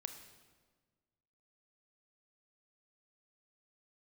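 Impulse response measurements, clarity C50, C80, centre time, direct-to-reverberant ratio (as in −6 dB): 8.5 dB, 10.0 dB, 20 ms, 7.0 dB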